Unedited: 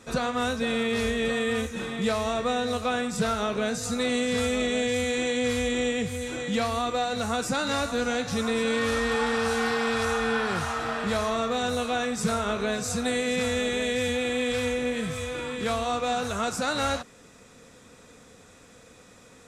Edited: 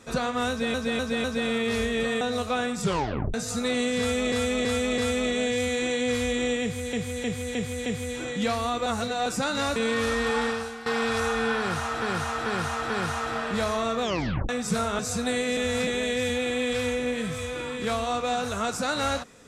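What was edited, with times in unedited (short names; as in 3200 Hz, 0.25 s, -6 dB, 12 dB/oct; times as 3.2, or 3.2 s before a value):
0.49–0.74 loop, 4 plays
1.46–2.56 cut
3.17 tape stop 0.52 s
4.34–4.67 loop, 4 plays
5.98–6.29 loop, 5 plays
6.98–7.38 reverse
7.88–8.61 cut
9.31–9.71 fade out quadratic, to -15 dB
10.43–10.87 loop, 4 plays
11.55 tape stop 0.47 s
12.52–12.78 cut
13.36–13.66 reverse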